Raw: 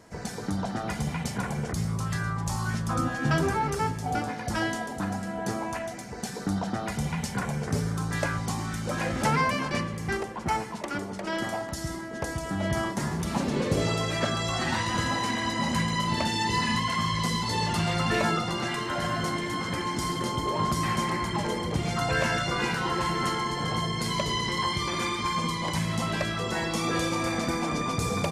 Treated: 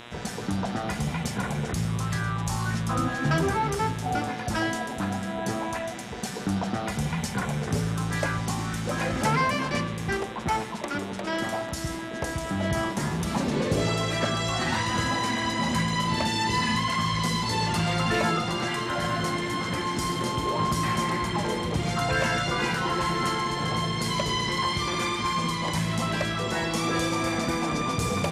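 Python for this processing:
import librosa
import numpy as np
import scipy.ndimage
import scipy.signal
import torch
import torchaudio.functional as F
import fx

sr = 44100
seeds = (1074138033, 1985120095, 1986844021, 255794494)

y = fx.cheby_harmonics(x, sr, harmonics=(5,), levels_db=(-26,), full_scale_db=-13.0)
y = fx.dmg_buzz(y, sr, base_hz=120.0, harmonics=33, level_db=-45.0, tilt_db=-1, odd_only=False)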